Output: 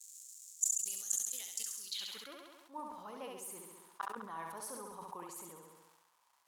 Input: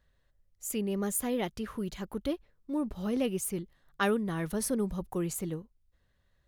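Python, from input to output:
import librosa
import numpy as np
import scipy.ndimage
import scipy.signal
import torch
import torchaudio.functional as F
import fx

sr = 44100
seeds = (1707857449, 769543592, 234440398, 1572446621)

p1 = fx.dmg_crackle(x, sr, seeds[0], per_s=430.0, level_db=-48.0)
p2 = fx.filter_sweep_bandpass(p1, sr, from_hz=7100.0, to_hz=970.0, start_s=1.74, end_s=2.41, q=5.4)
p3 = scipy.signal.lfilter([1.0, -0.8], [1.0], p2)
p4 = fx.gate_flip(p3, sr, shuts_db=-39.0, range_db=-35)
p5 = fx.high_shelf(p4, sr, hz=5800.0, db=11.5)
p6 = p5 + fx.room_flutter(p5, sr, wall_m=11.6, rt60_s=0.87, dry=0)
p7 = fx.sustainer(p6, sr, db_per_s=38.0)
y = F.gain(torch.from_numpy(p7), 14.0).numpy()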